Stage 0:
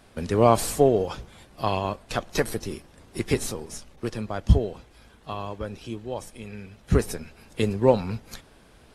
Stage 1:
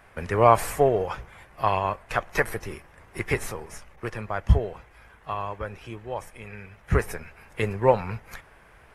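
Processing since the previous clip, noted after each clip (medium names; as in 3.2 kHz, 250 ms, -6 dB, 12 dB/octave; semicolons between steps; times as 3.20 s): graphic EQ 250/1000/2000/4000/8000 Hz -9/+4/+9/-10/-5 dB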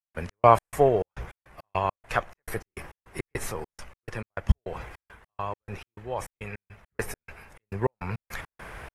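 reverse; upward compressor, threshold -29 dBFS; reverse; trance gate ".x.x.xx.x" 103 bpm -60 dB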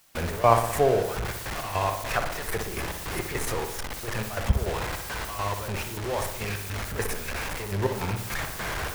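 jump at every zero crossing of -23.5 dBFS; filtered feedback delay 60 ms, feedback 62%, low-pass 2.4 kHz, level -7 dB; gate with hold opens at -27 dBFS; trim -3.5 dB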